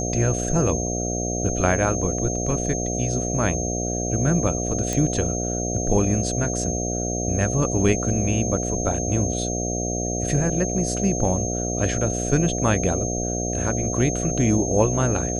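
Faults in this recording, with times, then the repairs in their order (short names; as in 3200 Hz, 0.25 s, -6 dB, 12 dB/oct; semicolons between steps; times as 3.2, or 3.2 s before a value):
buzz 60 Hz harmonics 12 -27 dBFS
tone 6400 Hz -28 dBFS
4.93 pop -11 dBFS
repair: de-click; notch 6400 Hz, Q 30; de-hum 60 Hz, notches 12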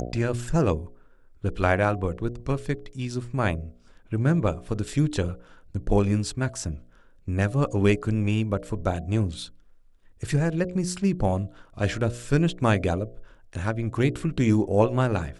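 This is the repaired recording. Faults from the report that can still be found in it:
4.93 pop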